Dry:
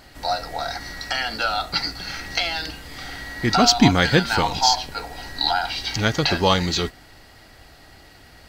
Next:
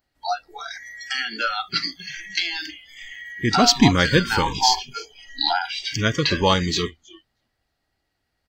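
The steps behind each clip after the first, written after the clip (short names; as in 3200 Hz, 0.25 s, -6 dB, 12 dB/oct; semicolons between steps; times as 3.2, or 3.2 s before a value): frequency-shifting echo 0.317 s, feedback 32%, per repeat -100 Hz, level -18 dB; spectral noise reduction 28 dB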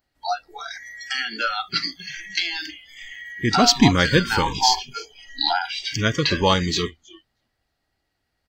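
nothing audible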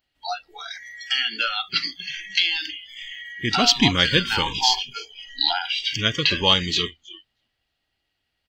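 bell 3000 Hz +13.5 dB 0.79 oct; gain -5 dB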